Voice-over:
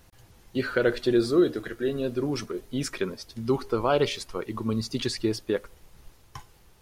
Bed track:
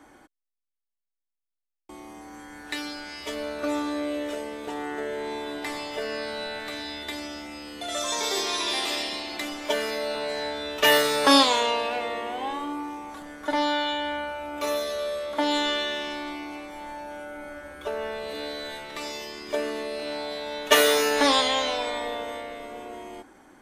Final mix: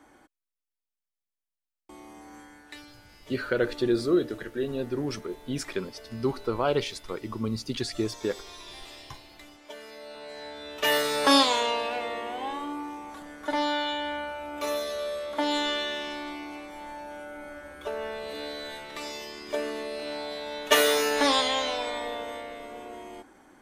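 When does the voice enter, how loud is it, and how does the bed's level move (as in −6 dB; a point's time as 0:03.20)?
2.75 s, −2.5 dB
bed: 0:02.38 −4 dB
0:02.96 −17.5 dB
0:09.73 −17.5 dB
0:11.20 −2.5 dB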